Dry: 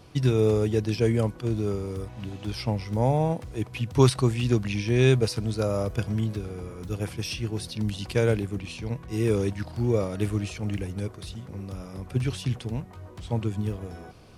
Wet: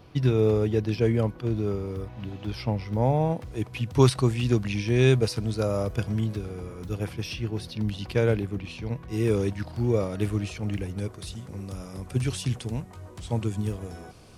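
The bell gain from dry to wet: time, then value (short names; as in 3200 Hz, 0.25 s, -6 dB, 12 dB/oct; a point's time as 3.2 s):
bell 8400 Hz 1.2 oct
3.15 s -11 dB
3.57 s -1.5 dB
6.79 s -1.5 dB
7.27 s -9.5 dB
8.71 s -9.5 dB
9.21 s -2.5 dB
10.89 s -2.5 dB
11.35 s +7 dB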